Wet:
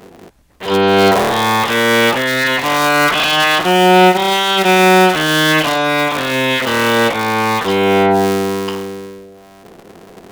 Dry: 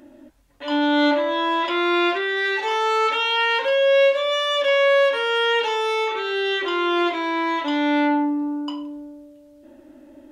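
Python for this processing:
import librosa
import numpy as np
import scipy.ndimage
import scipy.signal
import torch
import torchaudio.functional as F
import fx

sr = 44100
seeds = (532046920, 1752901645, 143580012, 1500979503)

y = fx.cycle_switch(x, sr, every=3, mode='inverted')
y = F.gain(torch.from_numpy(y), 7.5).numpy()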